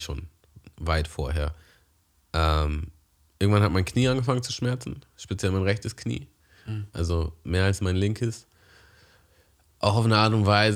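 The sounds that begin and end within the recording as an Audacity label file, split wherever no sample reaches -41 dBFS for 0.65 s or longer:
2.340000	8.410000	sound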